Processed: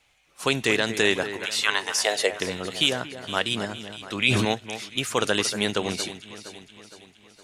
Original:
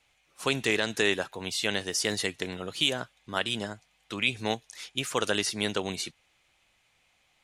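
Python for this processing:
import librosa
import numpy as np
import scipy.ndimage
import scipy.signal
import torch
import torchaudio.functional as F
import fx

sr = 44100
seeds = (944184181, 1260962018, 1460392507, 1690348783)

p1 = fx.highpass_res(x, sr, hz=fx.line((1.36, 1700.0), (2.31, 510.0)), q=5.4, at=(1.36, 2.31), fade=0.02)
p2 = p1 + fx.echo_alternate(p1, sr, ms=232, hz=2200.0, feedback_pct=70, wet_db=-11, dry=0)
p3 = fx.sustainer(p2, sr, db_per_s=21.0, at=(3.73, 4.45))
y = p3 * librosa.db_to_amplitude(4.0)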